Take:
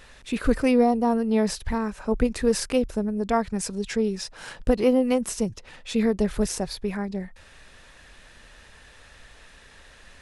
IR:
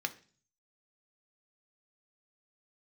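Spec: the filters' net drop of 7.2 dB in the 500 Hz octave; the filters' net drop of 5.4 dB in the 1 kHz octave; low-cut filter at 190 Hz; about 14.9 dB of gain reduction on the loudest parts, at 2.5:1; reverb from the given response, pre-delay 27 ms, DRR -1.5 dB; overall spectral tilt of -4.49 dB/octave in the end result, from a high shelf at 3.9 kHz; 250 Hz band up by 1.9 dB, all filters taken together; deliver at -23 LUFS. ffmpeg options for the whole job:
-filter_complex "[0:a]highpass=190,equalizer=f=250:t=o:g=5.5,equalizer=f=500:t=o:g=-8.5,equalizer=f=1000:t=o:g=-3.5,highshelf=f=3900:g=-4,acompressor=threshold=0.01:ratio=2.5,asplit=2[s0][s1];[1:a]atrim=start_sample=2205,adelay=27[s2];[s1][s2]afir=irnorm=-1:irlink=0,volume=0.794[s3];[s0][s3]amix=inputs=2:normalize=0,volume=4.22"

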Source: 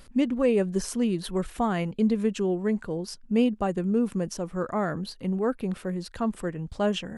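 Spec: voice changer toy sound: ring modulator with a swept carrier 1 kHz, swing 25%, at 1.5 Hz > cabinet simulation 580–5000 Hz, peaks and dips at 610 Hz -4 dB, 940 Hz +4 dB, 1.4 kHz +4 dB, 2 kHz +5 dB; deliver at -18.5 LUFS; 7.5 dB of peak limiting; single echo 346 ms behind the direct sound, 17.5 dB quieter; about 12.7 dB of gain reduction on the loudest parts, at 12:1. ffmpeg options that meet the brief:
-af "acompressor=threshold=0.0282:ratio=12,alimiter=level_in=1.58:limit=0.0631:level=0:latency=1,volume=0.631,aecho=1:1:346:0.133,aeval=exprs='val(0)*sin(2*PI*1000*n/s+1000*0.25/1.5*sin(2*PI*1.5*n/s))':c=same,highpass=580,equalizer=f=610:t=q:w=4:g=-4,equalizer=f=940:t=q:w=4:g=4,equalizer=f=1400:t=q:w=4:g=4,equalizer=f=2000:t=q:w=4:g=5,lowpass=f=5000:w=0.5412,lowpass=f=5000:w=1.3066,volume=8.41"

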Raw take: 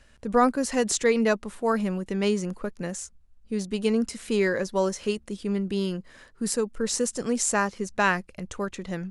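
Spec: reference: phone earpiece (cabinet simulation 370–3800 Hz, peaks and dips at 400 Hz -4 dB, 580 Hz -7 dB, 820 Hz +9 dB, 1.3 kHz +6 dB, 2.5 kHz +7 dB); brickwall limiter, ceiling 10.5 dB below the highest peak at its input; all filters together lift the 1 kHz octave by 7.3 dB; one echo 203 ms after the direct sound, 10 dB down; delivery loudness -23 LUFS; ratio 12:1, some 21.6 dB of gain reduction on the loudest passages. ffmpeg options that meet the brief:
-af "equalizer=f=1000:t=o:g=3,acompressor=threshold=0.0158:ratio=12,alimiter=level_in=2.37:limit=0.0631:level=0:latency=1,volume=0.422,highpass=370,equalizer=f=400:t=q:w=4:g=-4,equalizer=f=580:t=q:w=4:g=-7,equalizer=f=820:t=q:w=4:g=9,equalizer=f=1300:t=q:w=4:g=6,equalizer=f=2500:t=q:w=4:g=7,lowpass=f=3800:w=0.5412,lowpass=f=3800:w=1.3066,aecho=1:1:203:0.316,volume=12.6"

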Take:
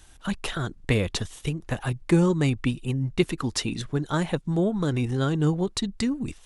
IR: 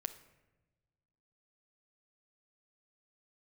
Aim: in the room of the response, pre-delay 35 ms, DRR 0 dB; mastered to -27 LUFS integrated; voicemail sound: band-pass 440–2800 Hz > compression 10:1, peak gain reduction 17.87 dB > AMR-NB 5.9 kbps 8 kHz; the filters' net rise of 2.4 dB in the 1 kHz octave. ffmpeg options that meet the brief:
-filter_complex "[0:a]equalizer=f=1000:t=o:g=3.5,asplit=2[s0][s1];[1:a]atrim=start_sample=2205,adelay=35[s2];[s1][s2]afir=irnorm=-1:irlink=0,volume=1.19[s3];[s0][s3]amix=inputs=2:normalize=0,highpass=440,lowpass=2800,acompressor=threshold=0.0141:ratio=10,volume=7.08" -ar 8000 -c:a libopencore_amrnb -b:a 5900

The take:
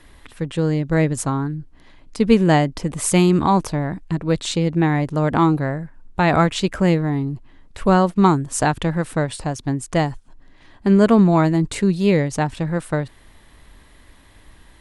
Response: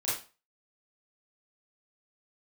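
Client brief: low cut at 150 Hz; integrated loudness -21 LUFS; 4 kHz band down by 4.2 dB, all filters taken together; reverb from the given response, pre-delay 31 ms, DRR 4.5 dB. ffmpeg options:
-filter_complex "[0:a]highpass=150,equalizer=f=4000:t=o:g=-5.5,asplit=2[s0][s1];[1:a]atrim=start_sample=2205,adelay=31[s2];[s1][s2]afir=irnorm=-1:irlink=0,volume=0.282[s3];[s0][s3]amix=inputs=2:normalize=0,volume=0.794"

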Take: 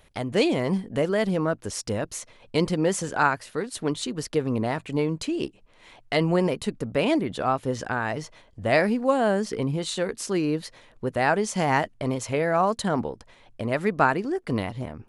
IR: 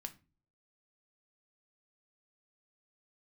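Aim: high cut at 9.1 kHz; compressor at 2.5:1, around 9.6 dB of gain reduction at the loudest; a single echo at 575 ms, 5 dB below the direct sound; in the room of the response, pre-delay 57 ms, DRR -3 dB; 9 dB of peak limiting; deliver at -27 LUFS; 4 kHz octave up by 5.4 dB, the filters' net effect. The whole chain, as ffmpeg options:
-filter_complex "[0:a]lowpass=9100,equalizer=f=4000:t=o:g=7,acompressor=threshold=0.0316:ratio=2.5,alimiter=limit=0.0668:level=0:latency=1,aecho=1:1:575:0.562,asplit=2[s0][s1];[1:a]atrim=start_sample=2205,adelay=57[s2];[s1][s2]afir=irnorm=-1:irlink=0,volume=2.24[s3];[s0][s3]amix=inputs=2:normalize=0,volume=1.19"

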